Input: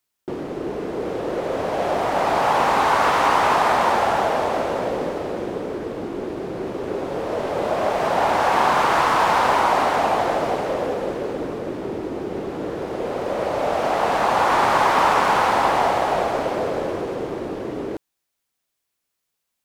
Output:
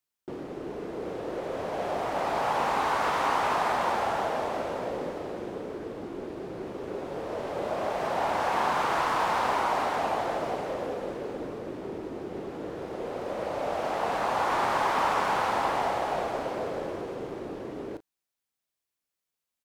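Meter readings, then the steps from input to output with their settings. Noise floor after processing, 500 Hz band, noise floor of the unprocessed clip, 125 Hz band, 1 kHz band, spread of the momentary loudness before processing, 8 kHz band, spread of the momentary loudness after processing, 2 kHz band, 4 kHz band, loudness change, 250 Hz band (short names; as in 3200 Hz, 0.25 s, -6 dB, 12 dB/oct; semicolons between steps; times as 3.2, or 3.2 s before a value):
under -85 dBFS, -9.0 dB, -79 dBFS, -9.0 dB, -9.0 dB, 12 LU, -9.0 dB, 12 LU, -9.0 dB, -9.0 dB, -9.0 dB, -9.0 dB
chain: doubler 36 ms -13 dB; gain -9 dB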